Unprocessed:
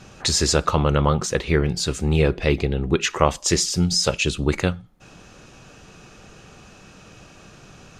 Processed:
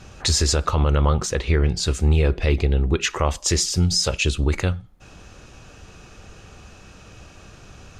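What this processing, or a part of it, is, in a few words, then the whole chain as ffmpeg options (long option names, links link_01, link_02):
car stereo with a boomy subwoofer: -filter_complex "[0:a]lowshelf=frequency=110:width_type=q:width=1.5:gain=6.5,alimiter=limit=-8.5dB:level=0:latency=1:release=67,asettb=1/sr,asplit=3[link_01][link_02][link_03];[link_01]atrim=end=1.314[link_04];[link_02]atrim=start=1.31:end=1.83,asetpts=PTS-STARTPTS,afade=type=in:duration=0.004:curve=qsin,afade=type=out:start_time=0.516:duration=0.004:curve=qsin,lowpass=9100[link_05];[link_03]atrim=start=1.826[link_06];[link_04][link_05]acrossfade=duration=0.004:curve1=hsin:curve2=qsin[link_07];[link_07][link_06]acrossfade=duration=0.004:curve1=qsin:curve2=hsin"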